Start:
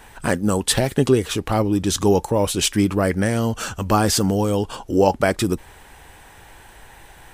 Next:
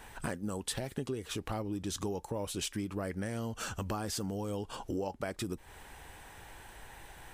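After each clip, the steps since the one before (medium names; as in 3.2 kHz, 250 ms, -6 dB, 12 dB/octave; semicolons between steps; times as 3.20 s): compression 6:1, threshold -28 dBFS, peak gain reduction 16.5 dB; trim -6 dB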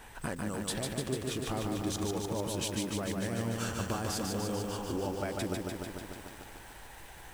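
bit-crushed delay 148 ms, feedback 80%, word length 9-bit, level -3 dB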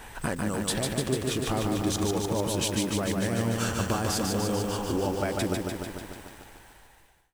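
fade out at the end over 1.88 s; trim +6.5 dB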